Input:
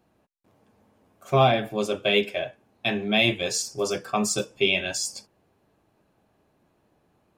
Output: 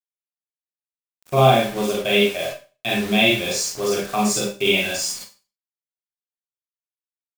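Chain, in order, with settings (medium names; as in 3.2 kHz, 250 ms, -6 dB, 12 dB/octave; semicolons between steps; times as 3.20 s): word length cut 6-bit, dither none; Schroeder reverb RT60 0.33 s, combs from 31 ms, DRR -3.5 dB; trim -1 dB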